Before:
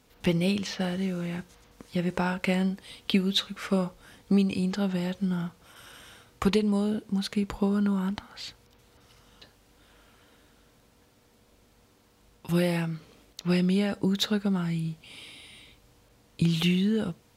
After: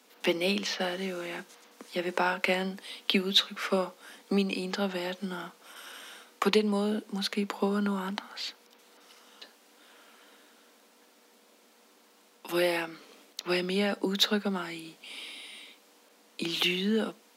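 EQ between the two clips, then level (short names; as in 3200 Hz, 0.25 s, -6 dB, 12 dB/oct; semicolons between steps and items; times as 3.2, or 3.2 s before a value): dynamic EQ 8300 Hz, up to -6 dB, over -57 dBFS, Q 1.7; steep high-pass 200 Hz 72 dB/oct; low shelf 270 Hz -9.5 dB; +4.0 dB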